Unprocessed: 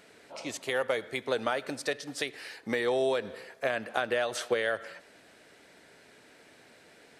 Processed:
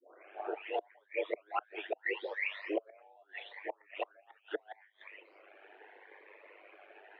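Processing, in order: spectral delay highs late, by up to 0.766 s; reverb removal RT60 0.83 s; flange 1.8 Hz, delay 0.1 ms, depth 9.2 ms, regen +74%; flipped gate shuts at -31 dBFS, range -36 dB; ring modulator 50 Hz; mistuned SSB +140 Hz 200–2500 Hz; cascading phaser rising 0.77 Hz; gain +15.5 dB

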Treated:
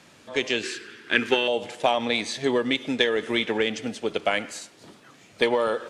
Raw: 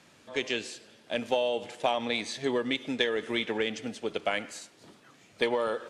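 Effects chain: 0.63–1.48 EQ curve 220 Hz 0 dB, 390 Hz +10 dB, 600 Hz -13 dB, 1500 Hz +14 dB, 3700 Hz +3 dB, 11000 Hz -2 dB; gain +5.5 dB

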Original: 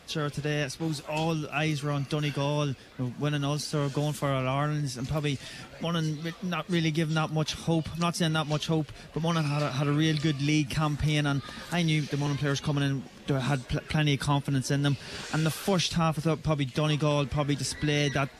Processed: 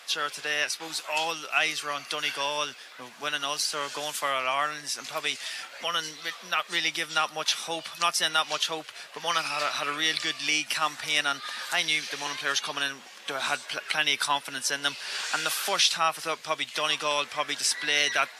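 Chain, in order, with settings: HPF 1000 Hz 12 dB/oct; gain +7.5 dB

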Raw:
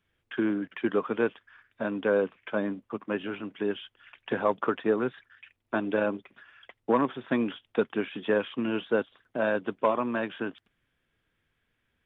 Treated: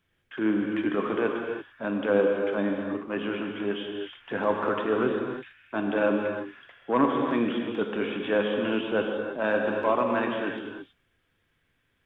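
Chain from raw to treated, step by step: transient shaper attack -8 dB, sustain 0 dB; non-linear reverb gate 0.36 s flat, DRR 1.5 dB; gain +2.5 dB

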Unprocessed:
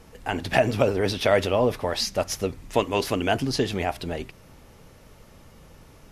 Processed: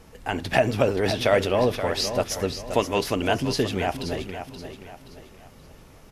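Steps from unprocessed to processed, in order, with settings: feedback echo 0.526 s, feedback 38%, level -9.5 dB

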